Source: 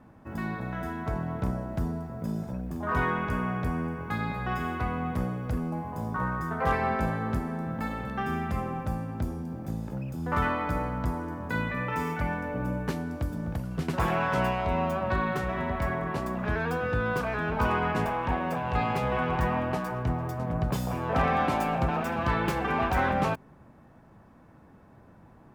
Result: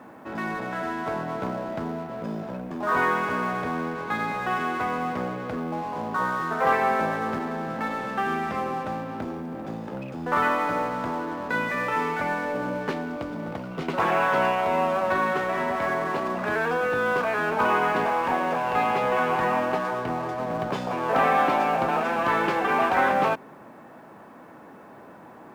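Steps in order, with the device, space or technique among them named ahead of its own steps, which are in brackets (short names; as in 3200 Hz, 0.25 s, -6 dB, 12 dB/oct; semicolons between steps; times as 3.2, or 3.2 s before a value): phone line with mismatched companding (BPF 310–3300 Hz; G.711 law mismatch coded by mu); 13.01–14.01 notch 1700 Hz, Q 9.1; gain +5 dB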